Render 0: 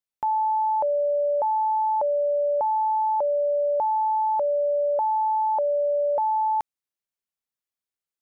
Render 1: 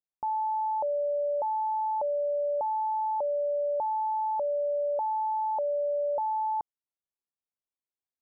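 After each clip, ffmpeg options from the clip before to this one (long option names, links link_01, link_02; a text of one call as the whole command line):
ffmpeg -i in.wav -af "lowpass=frequency=1100:width=0.5412,lowpass=frequency=1100:width=1.3066,volume=-5.5dB" out.wav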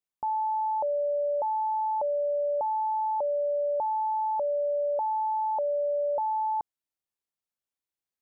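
ffmpeg -i in.wav -af "acontrast=26,volume=-4dB" out.wav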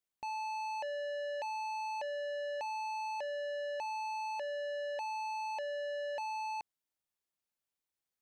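ffmpeg -i in.wav -af "asoftclip=type=tanh:threshold=-37.5dB" out.wav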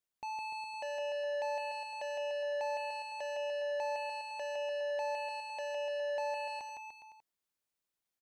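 ffmpeg -i in.wav -af "aecho=1:1:160|296|411.6|509.9|593.4:0.631|0.398|0.251|0.158|0.1,volume=-1dB" out.wav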